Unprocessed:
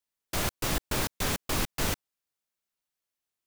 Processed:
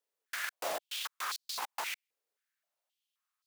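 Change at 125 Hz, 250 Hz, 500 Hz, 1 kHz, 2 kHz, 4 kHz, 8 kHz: under -40 dB, -25.5 dB, -7.5 dB, -4.0 dB, -4.0 dB, -5.0 dB, -9.0 dB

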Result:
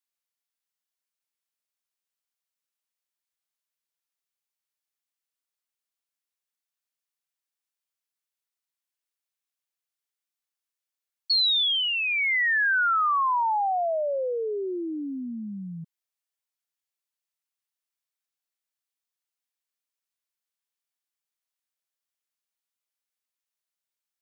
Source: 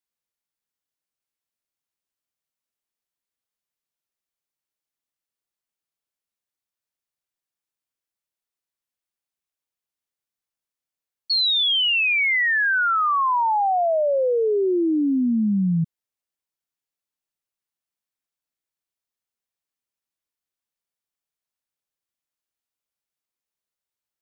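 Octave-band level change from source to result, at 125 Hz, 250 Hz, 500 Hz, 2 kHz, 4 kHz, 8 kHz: -16.0 dB, -12.5 dB, -7.5 dB, -3.5 dB, -3.5 dB, n/a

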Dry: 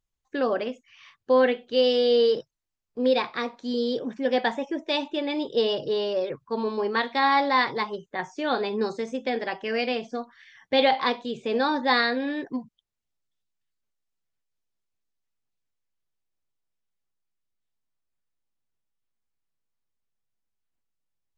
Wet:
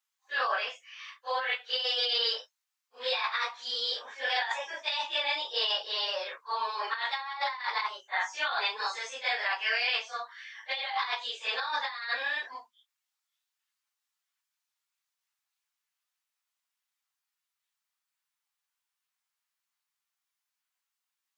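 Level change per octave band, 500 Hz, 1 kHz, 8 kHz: -16.5 dB, -6.0 dB, n/a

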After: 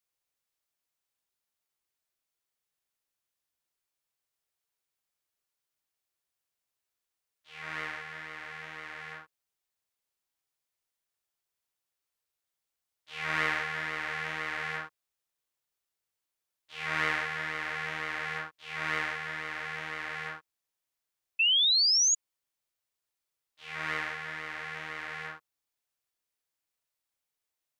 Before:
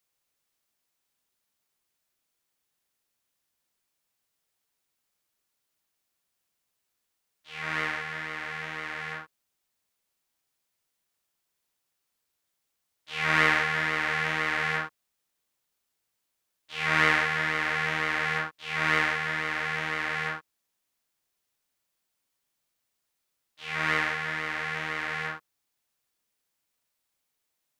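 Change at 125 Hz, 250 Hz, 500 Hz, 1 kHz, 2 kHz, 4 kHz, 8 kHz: -9.0, -9.5, -7.5, -7.0, -6.5, +6.5, +15.0 dB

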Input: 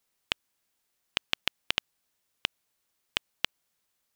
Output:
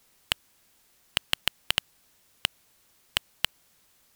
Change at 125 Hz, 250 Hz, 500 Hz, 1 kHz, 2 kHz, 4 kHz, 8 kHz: +5.5, 0.0, +0.5, +2.0, +1.5, +3.5, +8.0 dB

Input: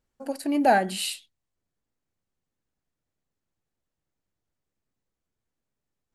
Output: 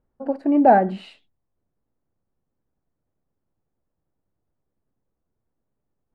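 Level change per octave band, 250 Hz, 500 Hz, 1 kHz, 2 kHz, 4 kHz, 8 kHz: +7.0 dB, +6.5 dB, +5.5 dB, -2.0 dB, -14.5 dB, under -30 dB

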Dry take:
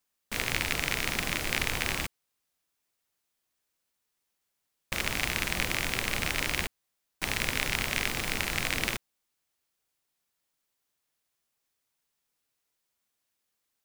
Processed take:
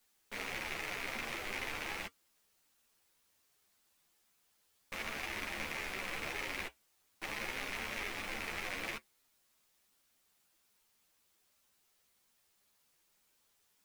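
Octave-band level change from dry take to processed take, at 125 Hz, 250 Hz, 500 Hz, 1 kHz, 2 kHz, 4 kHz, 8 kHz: -16.0, -10.5, -7.0, -7.0, -9.0, -12.0, -14.0 dB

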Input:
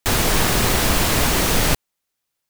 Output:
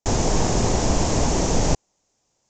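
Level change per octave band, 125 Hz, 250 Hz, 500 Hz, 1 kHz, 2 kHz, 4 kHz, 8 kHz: 0.0, 0.0, 0.0, -3.0, -12.0, -9.0, -4.0 dB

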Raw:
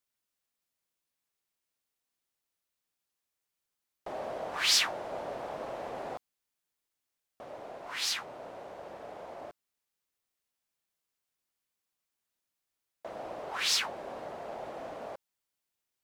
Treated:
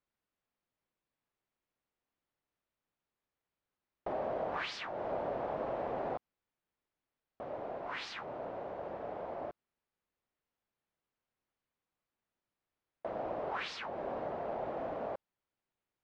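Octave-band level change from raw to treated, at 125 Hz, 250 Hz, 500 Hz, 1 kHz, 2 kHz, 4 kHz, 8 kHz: +4.0 dB, +3.5 dB, +2.5 dB, +1.0 dB, -7.0 dB, -16.5 dB, under -25 dB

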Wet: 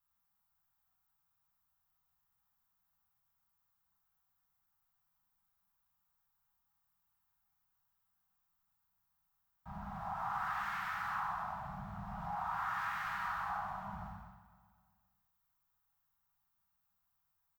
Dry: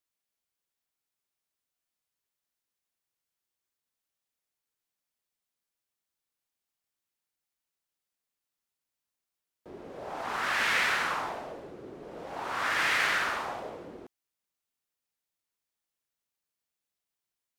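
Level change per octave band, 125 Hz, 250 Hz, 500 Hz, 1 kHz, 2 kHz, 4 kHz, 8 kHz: +3.0 dB, -6.0 dB, -16.0 dB, -4.0 dB, -13.5 dB, -20.5 dB, under -20 dB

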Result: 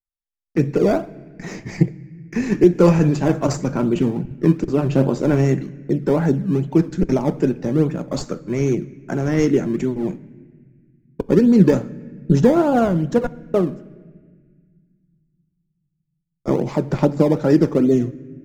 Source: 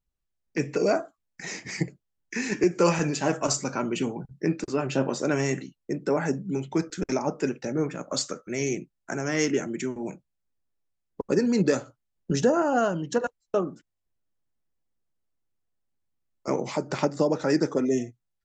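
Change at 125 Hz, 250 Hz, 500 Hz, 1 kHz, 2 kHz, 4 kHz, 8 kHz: +13.0, +10.0, +7.0, +3.5, 0.0, -2.5, -5.0 dB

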